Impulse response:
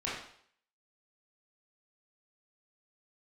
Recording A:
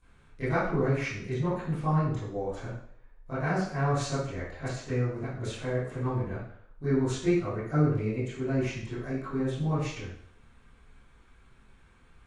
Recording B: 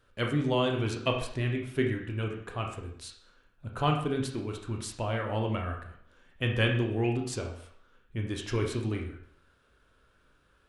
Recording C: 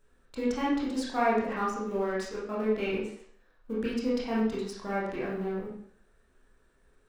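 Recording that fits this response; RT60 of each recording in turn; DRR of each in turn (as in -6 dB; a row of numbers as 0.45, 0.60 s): C; 0.60, 0.60, 0.60 s; -16.0, 1.5, -8.0 dB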